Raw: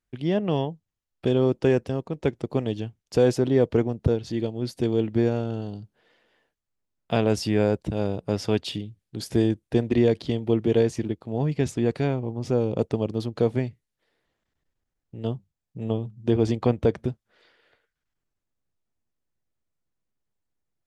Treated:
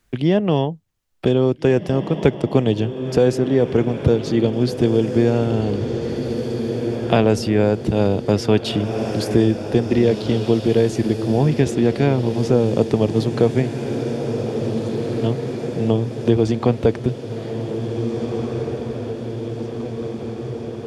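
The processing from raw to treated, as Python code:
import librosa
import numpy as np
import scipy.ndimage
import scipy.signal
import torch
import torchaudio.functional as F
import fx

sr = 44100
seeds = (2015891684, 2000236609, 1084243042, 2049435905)

y = fx.rider(x, sr, range_db=4, speed_s=0.5)
y = fx.echo_diffused(y, sr, ms=1825, feedback_pct=58, wet_db=-10.0)
y = fx.band_squash(y, sr, depth_pct=40)
y = F.gain(torch.from_numpy(y), 6.5).numpy()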